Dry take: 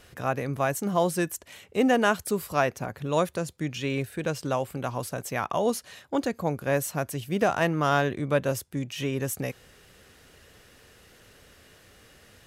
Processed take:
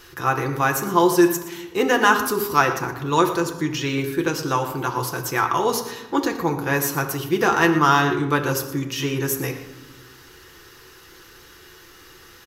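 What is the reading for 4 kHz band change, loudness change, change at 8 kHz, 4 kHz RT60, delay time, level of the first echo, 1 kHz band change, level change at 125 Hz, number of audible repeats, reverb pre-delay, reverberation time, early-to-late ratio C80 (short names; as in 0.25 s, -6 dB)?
+8.5 dB, +6.5 dB, +7.5 dB, 0.60 s, 0.117 s, -14.5 dB, +9.0 dB, +4.0 dB, 1, 6 ms, 1.2 s, 10.0 dB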